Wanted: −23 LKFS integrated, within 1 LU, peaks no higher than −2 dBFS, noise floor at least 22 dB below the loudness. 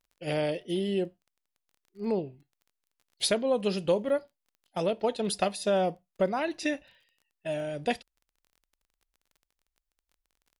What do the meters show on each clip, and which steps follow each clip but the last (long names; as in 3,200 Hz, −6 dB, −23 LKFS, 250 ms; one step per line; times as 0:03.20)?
crackle rate 22 per second; integrated loudness −30.5 LKFS; sample peak −12.5 dBFS; target loudness −23.0 LKFS
→ click removal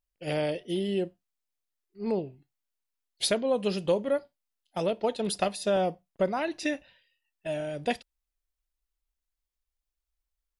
crackle rate 0 per second; integrated loudness −30.5 LKFS; sample peak −12.5 dBFS; target loudness −23.0 LKFS
→ level +7.5 dB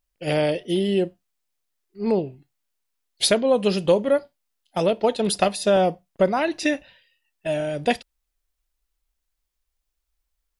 integrated loudness −23.0 LKFS; sample peak −5.0 dBFS; background noise floor −79 dBFS